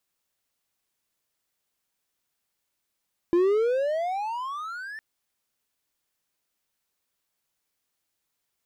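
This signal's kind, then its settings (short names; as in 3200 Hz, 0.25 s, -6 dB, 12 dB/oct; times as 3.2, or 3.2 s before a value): gliding synth tone triangle, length 1.66 s, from 338 Hz, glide +29 st, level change -18.5 dB, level -15 dB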